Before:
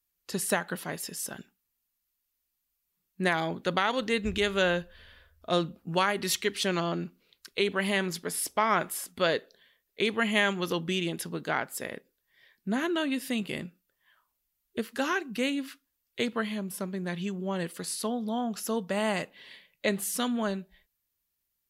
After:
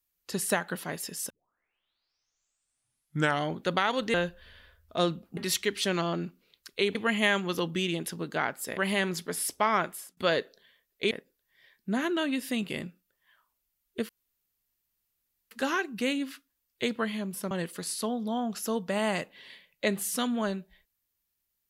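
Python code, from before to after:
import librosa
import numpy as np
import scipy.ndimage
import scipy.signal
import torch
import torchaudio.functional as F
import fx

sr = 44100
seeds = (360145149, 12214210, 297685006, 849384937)

y = fx.edit(x, sr, fx.tape_start(start_s=1.3, length_s=2.31),
    fx.cut(start_s=4.14, length_s=0.53),
    fx.cut(start_s=5.9, length_s=0.26),
    fx.fade_out_to(start_s=8.69, length_s=0.45, floor_db=-20.0),
    fx.move(start_s=10.08, length_s=1.82, to_s=7.74),
    fx.insert_room_tone(at_s=14.88, length_s=1.42),
    fx.cut(start_s=16.88, length_s=0.64), tone=tone)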